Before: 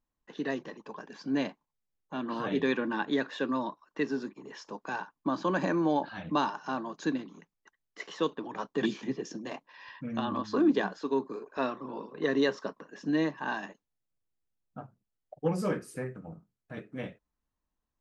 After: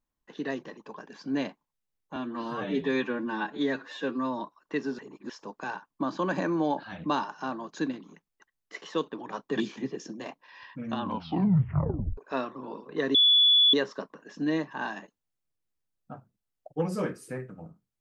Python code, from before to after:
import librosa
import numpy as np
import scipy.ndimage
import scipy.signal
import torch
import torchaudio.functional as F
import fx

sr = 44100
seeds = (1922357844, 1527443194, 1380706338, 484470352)

y = fx.edit(x, sr, fx.stretch_span(start_s=2.16, length_s=1.49, factor=1.5),
    fx.reverse_span(start_s=4.24, length_s=0.31),
    fx.tape_stop(start_s=10.26, length_s=1.17),
    fx.insert_tone(at_s=12.4, length_s=0.59, hz=3430.0, db=-16.5), tone=tone)